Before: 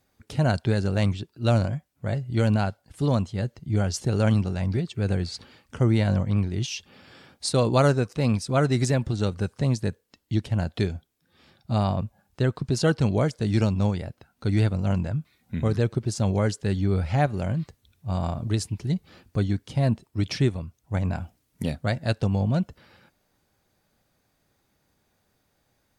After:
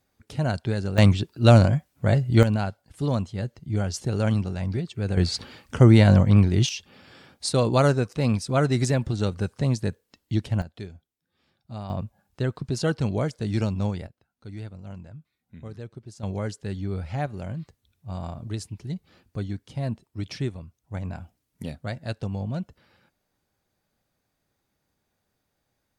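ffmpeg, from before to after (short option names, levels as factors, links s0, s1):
-af "asetnsamples=n=441:p=0,asendcmd='0.98 volume volume 7dB;2.43 volume volume -2dB;5.17 volume volume 7dB;6.69 volume volume 0dB;10.62 volume volume -12.5dB;11.9 volume volume -3dB;14.07 volume volume -15.5dB;16.23 volume volume -6.5dB',volume=0.708"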